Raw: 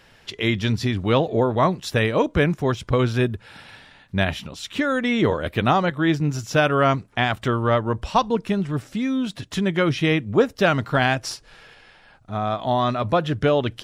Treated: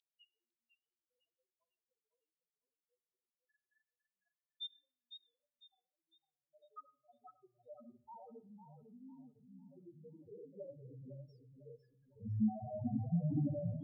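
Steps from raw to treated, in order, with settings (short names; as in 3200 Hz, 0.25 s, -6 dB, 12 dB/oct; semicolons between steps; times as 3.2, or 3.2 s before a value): phase scrambler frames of 0.2 s; tilt shelf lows +6.5 dB, about 1300 Hz; compressor, threshold -25 dBFS, peak gain reduction 16.5 dB; loudest bins only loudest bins 1; band-pass sweep 3700 Hz -> 230 Hz, 9.85–12.4; harmonic-percussive split percussive -6 dB; high-pass sweep 3500 Hz -> 64 Hz, 5.97–8.78; on a send at -16 dB: reverb RT60 0.50 s, pre-delay 33 ms; on the sum: warbling echo 0.503 s, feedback 32%, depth 60 cents, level -9 dB; gain +6.5 dB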